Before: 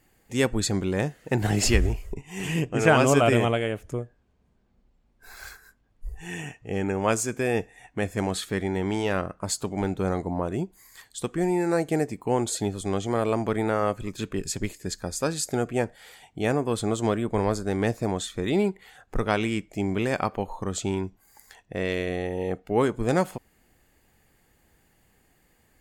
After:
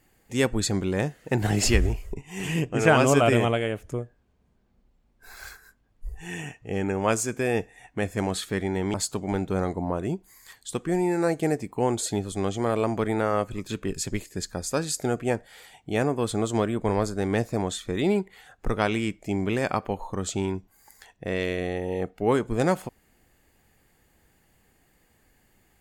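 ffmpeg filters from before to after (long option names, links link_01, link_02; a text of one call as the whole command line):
ffmpeg -i in.wav -filter_complex "[0:a]asplit=2[link_01][link_02];[link_01]atrim=end=8.942[link_03];[link_02]atrim=start=9.428[link_04];[link_03][link_04]acrossfade=duration=0.004:curve1=hsin:curve2=hsin" out.wav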